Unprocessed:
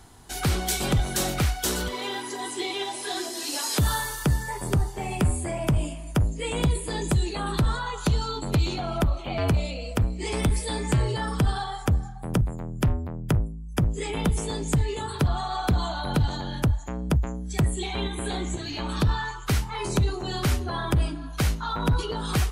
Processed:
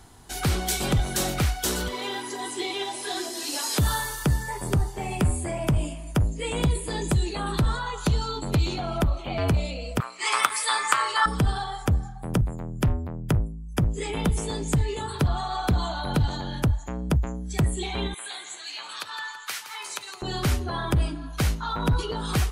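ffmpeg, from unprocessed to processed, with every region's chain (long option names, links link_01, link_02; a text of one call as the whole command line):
ffmpeg -i in.wav -filter_complex "[0:a]asettb=1/sr,asplit=3[link_01][link_02][link_03];[link_01]atrim=end=10.004[link_04];[link_02]atrim=start=10:end=11.26,asetpts=PTS-STARTPTS,afade=type=in:duration=0.004:curve=qsin,afade=type=out:start_time=1.256:duration=0.004:curve=qsin,highpass=frequency=1200:width_type=q:width=4.8,acontrast=72[link_05];[link_03]atrim=start=11.256[link_06];[link_04][link_05]acrossfade=duration=0.004:curve1=hsin:curve2=qsin[link_07];[link_07][link_06]acrossfade=duration=0.004:curve1=qsin:curve2=hsin,asettb=1/sr,asplit=3[link_08][link_09][link_10];[link_08]atrim=end=18.144[link_11];[link_09]atrim=start=18.14:end=20.22,asetpts=PTS-STARTPTS,afade=type=in:duration=0.004:curve=qsin,afade=type=out:start_time=2.076:duration=0.004:curve=qsin,highpass=1300,aecho=1:1:165|330|495|660|825:0.282|0.13|0.0596|0.0274|0.0126,atrim=end_sample=91728[link_12];[link_10]atrim=start=20.216[link_13];[link_11][link_12]acrossfade=duration=0.004:curve1=hsin:curve2=qsin[link_14];[link_14][link_13]acrossfade=duration=0.004:curve1=qsin:curve2=hsin" out.wav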